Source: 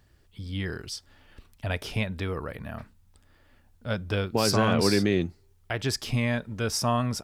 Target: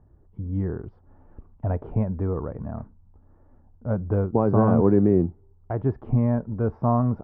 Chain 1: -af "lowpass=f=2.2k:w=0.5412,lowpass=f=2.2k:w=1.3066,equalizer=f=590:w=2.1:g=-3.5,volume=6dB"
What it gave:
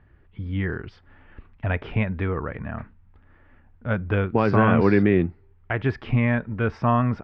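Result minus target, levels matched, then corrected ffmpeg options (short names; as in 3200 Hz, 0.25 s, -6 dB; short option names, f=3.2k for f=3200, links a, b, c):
2000 Hz band +17.5 dB
-af "lowpass=f=950:w=0.5412,lowpass=f=950:w=1.3066,equalizer=f=590:w=2.1:g=-3.5,volume=6dB"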